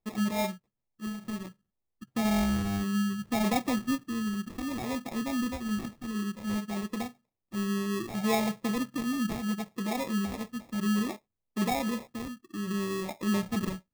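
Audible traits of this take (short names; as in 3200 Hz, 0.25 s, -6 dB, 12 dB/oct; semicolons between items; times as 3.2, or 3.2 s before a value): phasing stages 8, 0.63 Hz, lowest notch 660–1800 Hz; aliases and images of a low sample rate 1500 Hz, jitter 0%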